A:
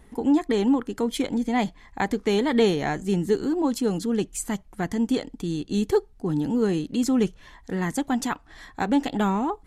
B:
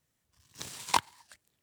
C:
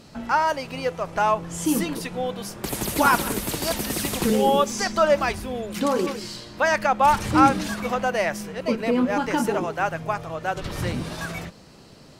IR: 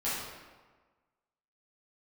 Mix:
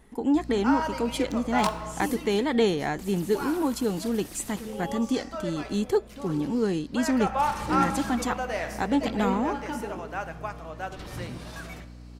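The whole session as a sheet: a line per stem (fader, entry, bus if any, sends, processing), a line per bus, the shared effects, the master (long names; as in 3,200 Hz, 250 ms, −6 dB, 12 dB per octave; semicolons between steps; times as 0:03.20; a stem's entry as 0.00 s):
−2.0 dB, 0.00 s, no send, no processing
−3.5 dB, 0.70 s, send −15 dB, dead-zone distortion −35.5 dBFS
0:01.82 −1.5 dB → 0:02.48 −10.5 dB → 0:06.84 −10.5 dB → 0:07.32 −1.5 dB → 0:09.31 −1.5 dB → 0:10.04 −9 dB, 0.35 s, send −19 dB, mains hum 60 Hz, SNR 11 dB; automatic ducking −8 dB, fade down 0.60 s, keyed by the first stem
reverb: on, RT60 1.4 s, pre-delay 7 ms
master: low-shelf EQ 150 Hz −3.5 dB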